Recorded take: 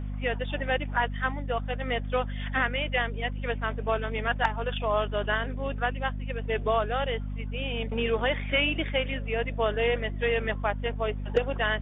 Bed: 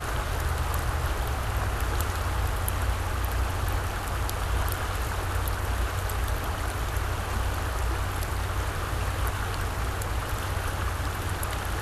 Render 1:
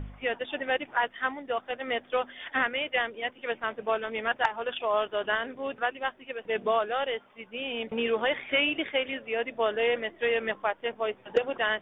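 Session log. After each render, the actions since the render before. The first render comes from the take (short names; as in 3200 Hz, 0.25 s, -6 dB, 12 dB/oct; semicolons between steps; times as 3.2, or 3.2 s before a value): de-hum 50 Hz, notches 5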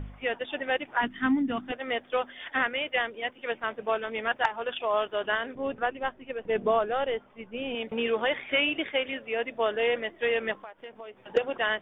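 1.01–1.72 resonant low shelf 370 Hz +11.5 dB, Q 3; 5.55–7.75 tilt -2.5 dB/oct; 10.54–11.35 compressor 8:1, threshold -39 dBFS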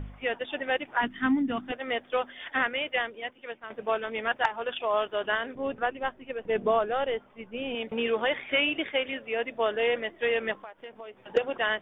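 2.87–3.7 fade out, to -12 dB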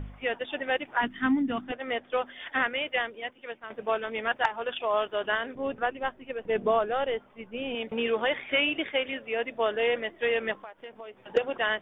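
1.64–2.26 air absorption 110 m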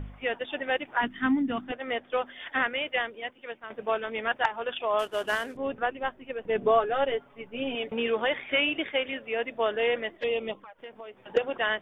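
4.99–5.57 CVSD 64 kbps; 6.61–7.9 comb 7.1 ms; 10.17–10.79 envelope flanger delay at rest 5.3 ms, full sweep at -27.5 dBFS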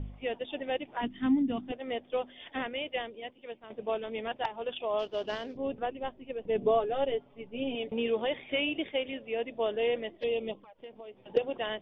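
steep low-pass 5300 Hz 36 dB/oct; bell 1500 Hz -15 dB 1.3 oct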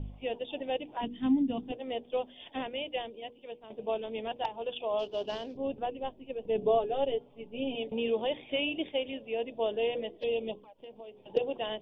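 band shelf 1600 Hz -8.5 dB 1.1 oct; notches 60/120/180/240/300/360/420/480 Hz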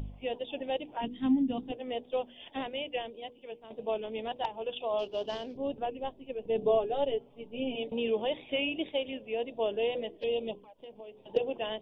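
wow and flutter 48 cents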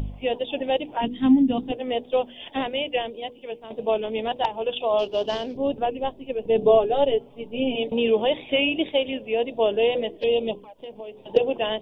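gain +9.5 dB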